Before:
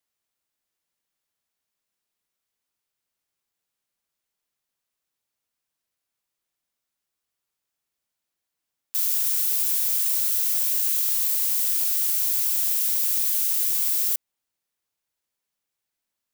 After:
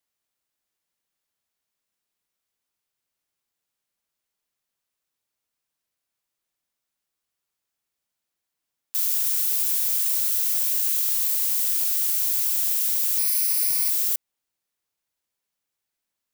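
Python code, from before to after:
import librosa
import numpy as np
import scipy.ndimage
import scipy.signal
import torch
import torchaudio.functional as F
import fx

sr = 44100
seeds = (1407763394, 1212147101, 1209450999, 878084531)

y = fx.ripple_eq(x, sr, per_octave=0.87, db=12, at=(13.18, 13.9))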